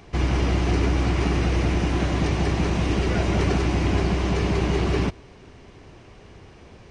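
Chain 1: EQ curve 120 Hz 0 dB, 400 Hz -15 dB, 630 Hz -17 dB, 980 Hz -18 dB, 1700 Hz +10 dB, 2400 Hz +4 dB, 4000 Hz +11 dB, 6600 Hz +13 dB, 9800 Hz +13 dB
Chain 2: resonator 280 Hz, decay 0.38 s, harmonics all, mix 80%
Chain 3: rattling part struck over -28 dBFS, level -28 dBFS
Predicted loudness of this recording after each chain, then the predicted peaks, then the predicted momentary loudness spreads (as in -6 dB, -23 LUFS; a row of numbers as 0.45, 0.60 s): -22.5, -35.0, -23.0 LUFS; -10.0, -21.0, -10.0 dBFS; 1, 2, 1 LU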